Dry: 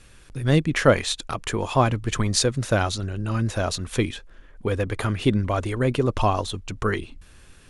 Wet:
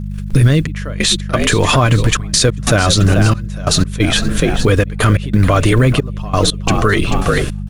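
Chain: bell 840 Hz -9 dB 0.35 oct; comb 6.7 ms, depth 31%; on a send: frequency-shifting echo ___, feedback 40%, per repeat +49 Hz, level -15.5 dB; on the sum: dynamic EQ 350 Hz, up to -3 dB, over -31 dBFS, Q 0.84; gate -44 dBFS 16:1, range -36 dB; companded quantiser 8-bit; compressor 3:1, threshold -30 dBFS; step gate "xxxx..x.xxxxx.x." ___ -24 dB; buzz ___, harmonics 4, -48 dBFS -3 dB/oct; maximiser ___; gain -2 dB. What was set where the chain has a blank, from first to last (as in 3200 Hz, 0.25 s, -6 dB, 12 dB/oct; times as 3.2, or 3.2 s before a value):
0.438 s, 90 bpm, 50 Hz, +27 dB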